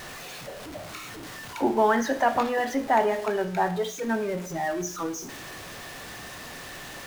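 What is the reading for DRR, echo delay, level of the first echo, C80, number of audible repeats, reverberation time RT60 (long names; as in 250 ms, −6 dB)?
9.5 dB, no echo audible, no echo audible, 17.0 dB, no echo audible, 0.55 s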